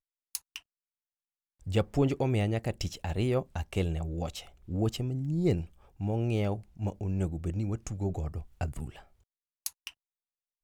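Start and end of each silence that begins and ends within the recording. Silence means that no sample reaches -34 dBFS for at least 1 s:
0.57–1.67 s

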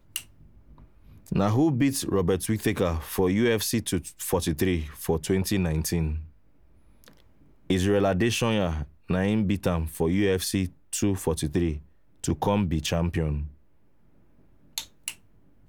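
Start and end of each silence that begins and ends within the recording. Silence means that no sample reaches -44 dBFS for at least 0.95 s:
13.53–14.78 s

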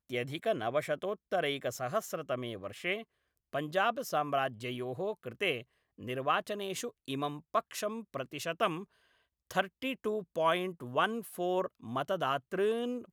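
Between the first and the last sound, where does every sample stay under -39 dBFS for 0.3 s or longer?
3.02–3.53 s
5.61–6.01 s
8.83–9.51 s

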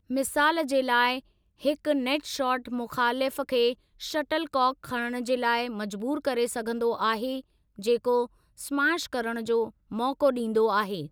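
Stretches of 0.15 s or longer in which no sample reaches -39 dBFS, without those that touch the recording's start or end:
1.19–1.63 s
3.74–4.01 s
7.40–7.79 s
8.26–8.59 s
9.69–9.91 s

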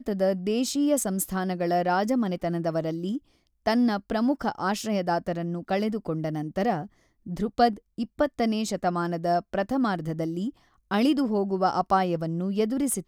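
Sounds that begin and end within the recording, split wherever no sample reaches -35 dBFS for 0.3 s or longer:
3.66–6.86 s
7.27–10.50 s

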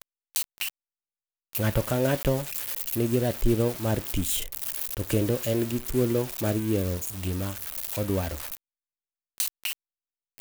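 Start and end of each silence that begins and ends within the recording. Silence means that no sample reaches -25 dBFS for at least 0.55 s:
0.69–1.55 s
8.55–9.40 s

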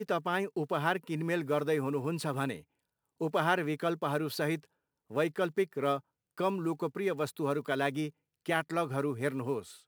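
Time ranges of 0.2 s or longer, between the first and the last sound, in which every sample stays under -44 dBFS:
2.60–3.21 s
4.65–5.11 s
5.99–6.38 s
8.10–8.46 s

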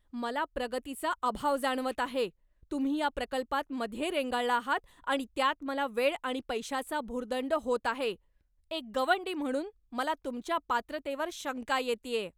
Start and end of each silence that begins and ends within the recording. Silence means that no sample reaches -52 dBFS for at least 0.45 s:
8.16–8.71 s

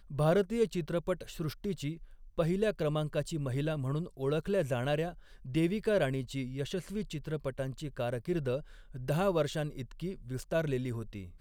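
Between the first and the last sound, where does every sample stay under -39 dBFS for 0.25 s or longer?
1.95–2.38 s
5.12–5.46 s
8.60–8.95 s

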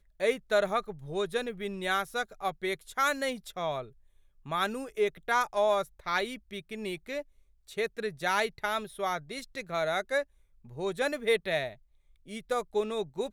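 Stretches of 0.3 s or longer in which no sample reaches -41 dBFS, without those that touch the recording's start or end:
3.88–4.46 s
7.22–7.69 s
10.23–10.72 s
11.73–12.29 s

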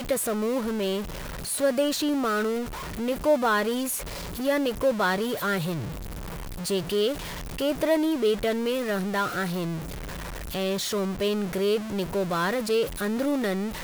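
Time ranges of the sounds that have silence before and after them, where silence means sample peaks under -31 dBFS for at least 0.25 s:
1.46–2.65 s
2.99–3.99 s
4.39–5.88 s
6.61–7.14 s
7.58–9.79 s

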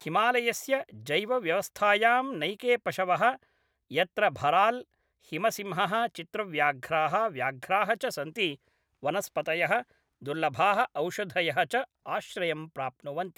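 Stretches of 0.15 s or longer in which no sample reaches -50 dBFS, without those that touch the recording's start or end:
3.43–3.91 s
4.83–5.25 s
8.55–9.03 s
9.83–10.21 s
11.85–12.06 s

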